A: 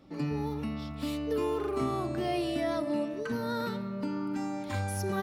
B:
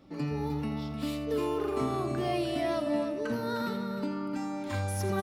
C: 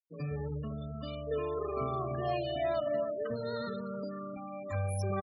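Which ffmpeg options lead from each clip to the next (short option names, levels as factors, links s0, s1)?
-af "aecho=1:1:83|305:0.237|0.376"
-af "aecho=1:1:1.7:0.71,afftfilt=real='re*gte(hypot(re,im),0.0251)':imag='im*gte(hypot(re,im),0.0251)':win_size=1024:overlap=0.75,volume=0.631"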